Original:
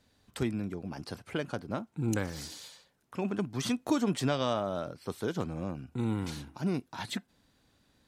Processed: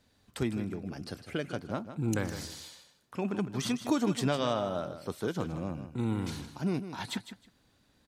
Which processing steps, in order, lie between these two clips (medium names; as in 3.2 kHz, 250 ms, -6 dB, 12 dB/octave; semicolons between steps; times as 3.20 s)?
0.79–1.55 s: peaking EQ 940 Hz -10.5 dB 0.38 oct; on a send: feedback delay 156 ms, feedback 18%, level -11 dB